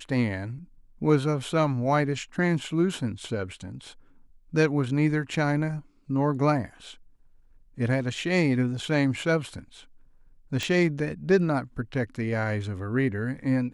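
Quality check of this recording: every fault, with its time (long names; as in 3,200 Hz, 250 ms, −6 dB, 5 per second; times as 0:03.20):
0:10.63: click −15 dBFS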